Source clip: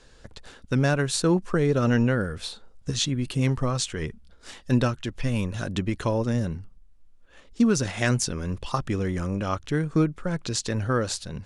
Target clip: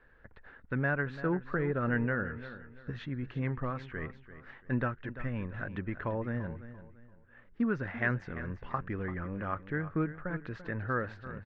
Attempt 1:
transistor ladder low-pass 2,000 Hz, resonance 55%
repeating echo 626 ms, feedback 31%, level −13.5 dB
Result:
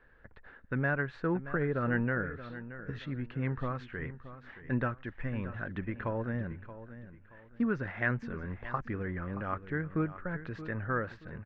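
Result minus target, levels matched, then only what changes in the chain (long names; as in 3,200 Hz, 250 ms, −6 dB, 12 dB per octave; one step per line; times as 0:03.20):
echo 285 ms late
change: repeating echo 341 ms, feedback 31%, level −13.5 dB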